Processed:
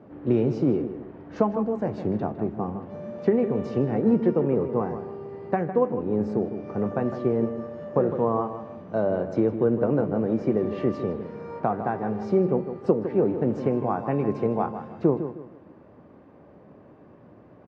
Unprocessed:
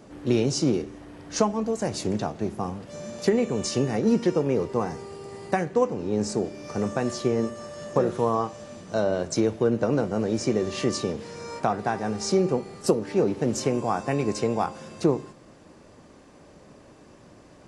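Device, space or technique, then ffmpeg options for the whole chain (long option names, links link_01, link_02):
phone in a pocket: -filter_complex "[0:a]highpass=80,lowpass=3000,highshelf=frequency=2200:gain=-11.5,highshelf=frequency=3300:gain=-9,asplit=2[link_01][link_02];[link_02]adelay=156,lowpass=frequency=2500:poles=1,volume=-10dB,asplit=2[link_03][link_04];[link_04]adelay=156,lowpass=frequency=2500:poles=1,volume=0.33,asplit=2[link_05][link_06];[link_06]adelay=156,lowpass=frequency=2500:poles=1,volume=0.33,asplit=2[link_07][link_08];[link_08]adelay=156,lowpass=frequency=2500:poles=1,volume=0.33[link_09];[link_01][link_03][link_05][link_07][link_09]amix=inputs=5:normalize=0,volume=1dB"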